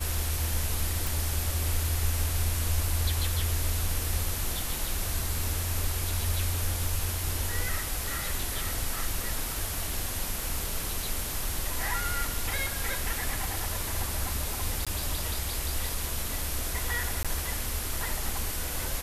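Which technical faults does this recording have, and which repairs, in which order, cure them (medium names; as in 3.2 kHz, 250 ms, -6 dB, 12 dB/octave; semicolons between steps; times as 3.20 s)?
1.07 s: pop
14.85–14.87 s: dropout 16 ms
17.23–17.25 s: dropout 16 ms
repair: de-click; interpolate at 14.85 s, 16 ms; interpolate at 17.23 s, 16 ms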